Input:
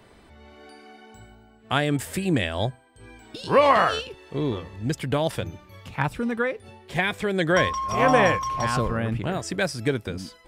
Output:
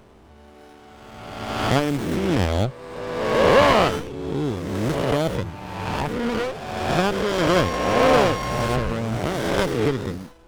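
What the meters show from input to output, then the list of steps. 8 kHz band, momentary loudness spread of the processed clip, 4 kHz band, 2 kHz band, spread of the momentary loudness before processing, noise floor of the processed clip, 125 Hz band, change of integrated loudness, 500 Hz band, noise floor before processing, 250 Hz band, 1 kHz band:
+2.5 dB, 13 LU, +3.5 dB, +0.5 dB, 14 LU, -48 dBFS, +3.5 dB, +2.5 dB, +4.0 dB, -53 dBFS, +4.0 dB, +1.5 dB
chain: spectral swells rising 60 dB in 1.71 s; dynamic EQ 3000 Hz, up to +6 dB, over -40 dBFS, Q 3.1; running maximum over 17 samples

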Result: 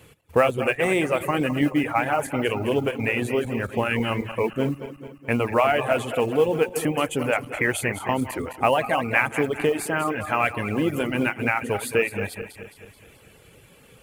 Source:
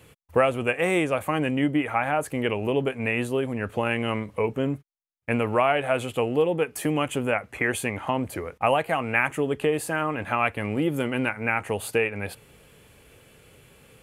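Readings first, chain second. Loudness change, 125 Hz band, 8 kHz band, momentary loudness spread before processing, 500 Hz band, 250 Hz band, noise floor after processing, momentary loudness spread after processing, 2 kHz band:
+2.0 dB, +1.5 dB, +2.5 dB, 5 LU, +2.0 dB, +1.5 dB, -53 dBFS, 6 LU, +2.0 dB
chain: regenerating reverse delay 0.108 s, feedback 71%, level -8.5 dB; modulation noise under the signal 31 dB; reverb removal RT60 0.65 s; gain +2 dB

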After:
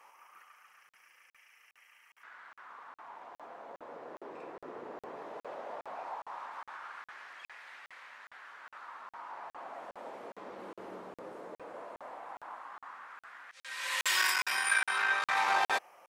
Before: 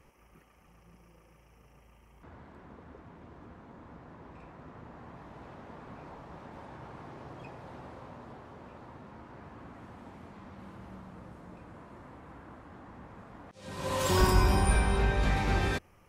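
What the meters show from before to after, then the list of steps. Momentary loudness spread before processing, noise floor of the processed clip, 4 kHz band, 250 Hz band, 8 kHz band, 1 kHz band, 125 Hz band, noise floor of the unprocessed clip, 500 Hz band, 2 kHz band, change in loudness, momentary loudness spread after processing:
23 LU, under -85 dBFS, +3.5 dB, -16.5 dB, +2.0 dB, +0.5 dB, -33.5 dB, -61 dBFS, -7.5 dB, +6.5 dB, -7.0 dB, 22 LU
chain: one diode to ground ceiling -20 dBFS; LFO high-pass sine 0.16 Hz 410–1900 Hz; crackling interface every 0.41 s, samples 2048, zero, from 0.89; gain +3.5 dB

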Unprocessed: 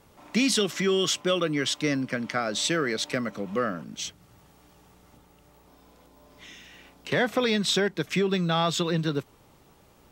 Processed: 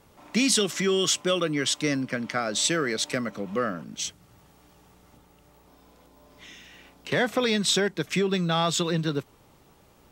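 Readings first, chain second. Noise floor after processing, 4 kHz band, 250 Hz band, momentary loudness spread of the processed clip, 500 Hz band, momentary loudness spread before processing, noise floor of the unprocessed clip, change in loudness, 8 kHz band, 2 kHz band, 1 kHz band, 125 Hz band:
-58 dBFS, +1.0 dB, 0.0 dB, 9 LU, 0.0 dB, 9 LU, -58 dBFS, +1.0 dB, +4.5 dB, 0.0 dB, 0.0 dB, 0.0 dB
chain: dynamic EQ 8400 Hz, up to +6 dB, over -45 dBFS, Q 0.98

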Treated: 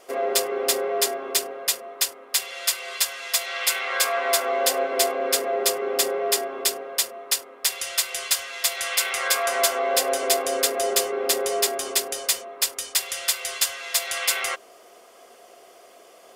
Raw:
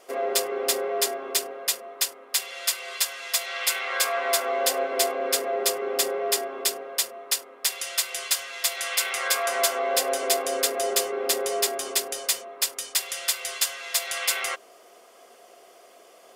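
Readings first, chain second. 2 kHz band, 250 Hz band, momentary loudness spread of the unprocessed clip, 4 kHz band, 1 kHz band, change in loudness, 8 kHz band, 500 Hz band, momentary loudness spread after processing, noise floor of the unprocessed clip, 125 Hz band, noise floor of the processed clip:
+2.0 dB, +2.5 dB, 4 LU, +2.0 dB, +2.0 dB, +2.0 dB, +2.0 dB, +2.0 dB, 4 LU, -53 dBFS, n/a, -50 dBFS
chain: low shelf 100 Hz +6 dB; gain +2 dB

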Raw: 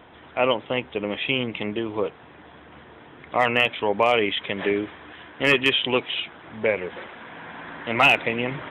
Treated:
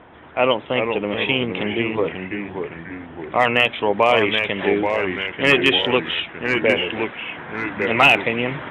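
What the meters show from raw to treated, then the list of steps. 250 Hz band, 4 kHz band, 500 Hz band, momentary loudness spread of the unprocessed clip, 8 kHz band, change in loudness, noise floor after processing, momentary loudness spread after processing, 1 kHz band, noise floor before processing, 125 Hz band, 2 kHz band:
+5.5 dB, +4.0 dB, +4.5 dB, 18 LU, n/a, +3.5 dB, -40 dBFS, 14 LU, +4.0 dB, -48 dBFS, +5.0 dB, +4.5 dB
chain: echoes that change speed 0.342 s, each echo -2 st, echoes 3, each echo -6 dB; low-pass opened by the level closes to 2300 Hz, open at -16.5 dBFS; gain +3.5 dB

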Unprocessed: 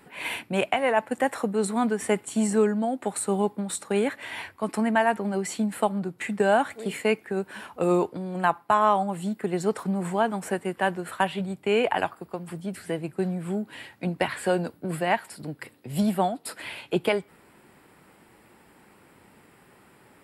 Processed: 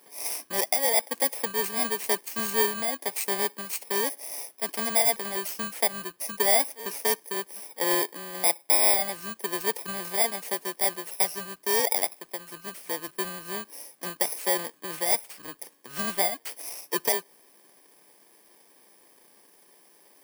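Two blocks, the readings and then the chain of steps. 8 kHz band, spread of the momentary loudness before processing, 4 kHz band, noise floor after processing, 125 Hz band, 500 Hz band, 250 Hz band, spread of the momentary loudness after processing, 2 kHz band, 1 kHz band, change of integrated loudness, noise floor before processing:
+9.0 dB, 11 LU, +6.0 dB, -59 dBFS, -16.0 dB, -5.5 dB, -12.5 dB, 13 LU, -1.5 dB, -6.0 dB, +1.0 dB, -57 dBFS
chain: FFT order left unsorted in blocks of 32 samples; HPF 460 Hz 12 dB/oct

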